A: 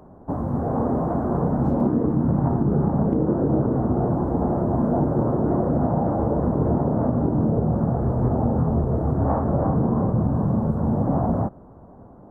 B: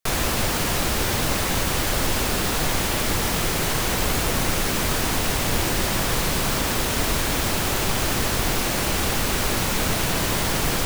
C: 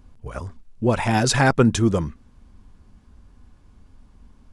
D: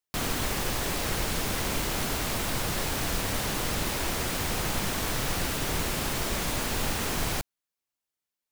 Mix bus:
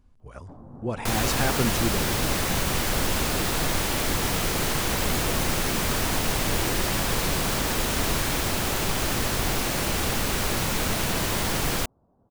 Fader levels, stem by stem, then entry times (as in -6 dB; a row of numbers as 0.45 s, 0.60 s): -19.5 dB, -3.0 dB, -10.0 dB, -5.5 dB; 0.20 s, 1.00 s, 0.00 s, 1.00 s